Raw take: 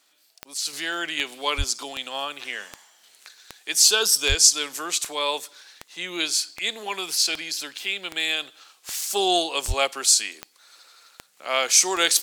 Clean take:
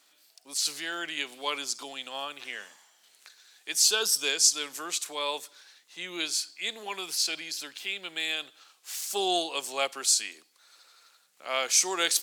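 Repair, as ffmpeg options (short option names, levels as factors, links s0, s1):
-filter_complex "[0:a]adeclick=t=4,asplit=3[s0][s1][s2];[s0]afade=t=out:st=1.57:d=0.02[s3];[s1]highpass=f=140:w=0.5412,highpass=f=140:w=1.3066,afade=t=in:st=1.57:d=0.02,afade=t=out:st=1.69:d=0.02[s4];[s2]afade=t=in:st=1.69:d=0.02[s5];[s3][s4][s5]amix=inputs=3:normalize=0,asplit=3[s6][s7][s8];[s6]afade=t=out:st=4.28:d=0.02[s9];[s7]highpass=f=140:w=0.5412,highpass=f=140:w=1.3066,afade=t=in:st=4.28:d=0.02,afade=t=out:st=4.4:d=0.02[s10];[s8]afade=t=in:st=4.4:d=0.02[s11];[s9][s10][s11]amix=inputs=3:normalize=0,asplit=3[s12][s13][s14];[s12]afade=t=out:st=9.67:d=0.02[s15];[s13]highpass=f=140:w=0.5412,highpass=f=140:w=1.3066,afade=t=in:st=9.67:d=0.02,afade=t=out:st=9.79:d=0.02[s16];[s14]afade=t=in:st=9.79:d=0.02[s17];[s15][s16][s17]amix=inputs=3:normalize=0,asetnsamples=n=441:p=0,asendcmd='0.73 volume volume -6dB',volume=1"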